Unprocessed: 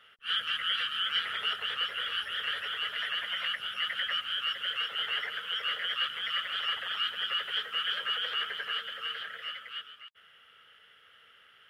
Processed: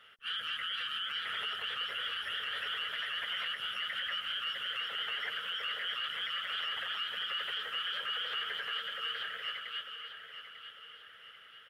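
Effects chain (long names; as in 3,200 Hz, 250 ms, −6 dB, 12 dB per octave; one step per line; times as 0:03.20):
brickwall limiter −28 dBFS, peak gain reduction 9.5 dB
on a send: repeating echo 896 ms, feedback 44%, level −10 dB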